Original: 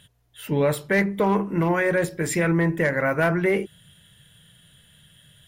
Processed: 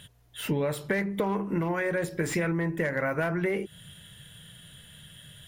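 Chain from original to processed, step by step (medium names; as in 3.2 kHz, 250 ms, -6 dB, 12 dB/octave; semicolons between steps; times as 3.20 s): compression 12:1, threshold -29 dBFS, peak gain reduction 13.5 dB; slew-rate limiter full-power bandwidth 79 Hz; trim +4.5 dB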